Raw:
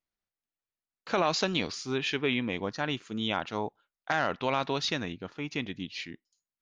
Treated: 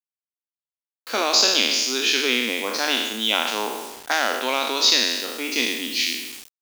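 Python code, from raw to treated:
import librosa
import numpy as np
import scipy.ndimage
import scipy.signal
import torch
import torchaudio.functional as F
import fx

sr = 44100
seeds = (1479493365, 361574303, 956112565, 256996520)

p1 = fx.spec_trails(x, sr, decay_s=1.16)
p2 = scipy.signal.sosfilt(scipy.signal.ellip(4, 1.0, 40, 230.0, 'highpass', fs=sr, output='sos'), p1)
p3 = fx.quant_dither(p2, sr, seeds[0], bits=8, dither='none')
p4 = fx.dynamic_eq(p3, sr, hz=5400.0, q=0.92, threshold_db=-42.0, ratio=4.0, max_db=5)
p5 = fx.rider(p4, sr, range_db=5, speed_s=0.5)
p6 = p4 + (p5 * 10.0 ** (0.0 / 20.0))
p7 = fx.high_shelf(p6, sr, hz=3000.0, db=11.5)
y = p7 * 10.0 ** (-4.0 / 20.0)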